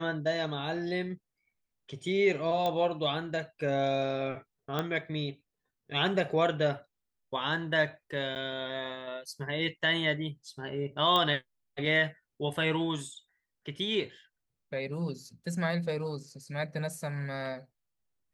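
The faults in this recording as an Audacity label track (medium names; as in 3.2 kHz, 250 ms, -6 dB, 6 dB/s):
2.660000	2.660000	pop -18 dBFS
4.790000	4.790000	pop -17 dBFS
8.350000	8.360000	dropout 9.2 ms
11.160000	11.160000	pop -15 dBFS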